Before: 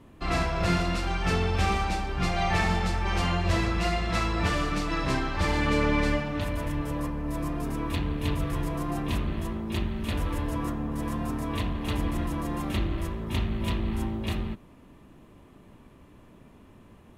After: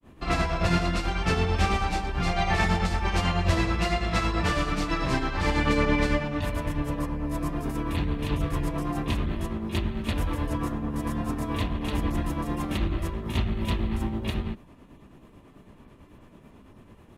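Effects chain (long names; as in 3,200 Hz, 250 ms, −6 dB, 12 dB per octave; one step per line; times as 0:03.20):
granular cloud 190 ms, grains 9.1 per second, spray 11 ms, pitch spread up and down by 0 semitones
level +3 dB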